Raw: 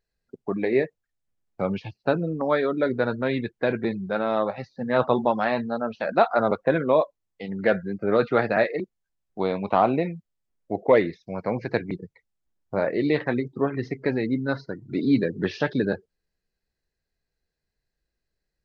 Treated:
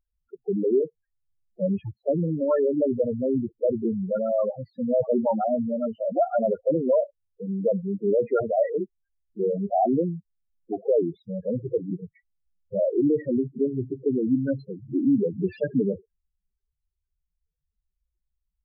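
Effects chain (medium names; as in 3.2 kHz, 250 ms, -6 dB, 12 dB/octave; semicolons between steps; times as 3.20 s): loudest bins only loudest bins 4; peak limiter -17.5 dBFS, peak gain reduction 8 dB; trim +3.5 dB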